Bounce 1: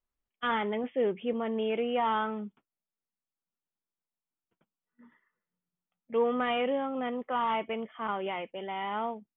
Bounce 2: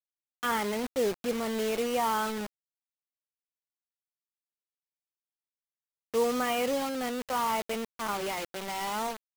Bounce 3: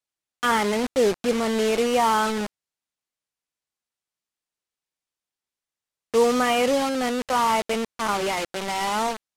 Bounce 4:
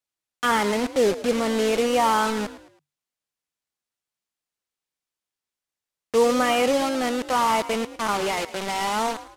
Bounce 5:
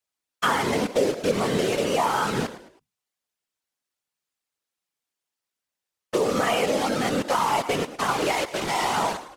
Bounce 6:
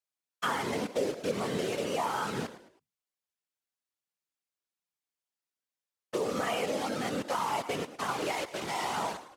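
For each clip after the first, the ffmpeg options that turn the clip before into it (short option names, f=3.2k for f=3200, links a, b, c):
-af "acrusher=bits=5:mix=0:aa=0.000001"
-af "lowpass=10k,volume=8dB"
-filter_complex "[0:a]asplit=4[a][b][c][d];[b]adelay=108,afreqshift=48,volume=-15dB[e];[c]adelay=216,afreqshift=96,volume=-23.6dB[f];[d]adelay=324,afreqshift=144,volume=-32.3dB[g];[a][e][f][g]amix=inputs=4:normalize=0"
-af "lowshelf=f=140:g=-5,acompressor=threshold=-21dB:ratio=6,afftfilt=real='hypot(re,im)*cos(2*PI*random(0))':imag='hypot(re,im)*sin(2*PI*random(1))':win_size=512:overlap=0.75,volume=8dB"
-af "highpass=69,volume=-8.5dB"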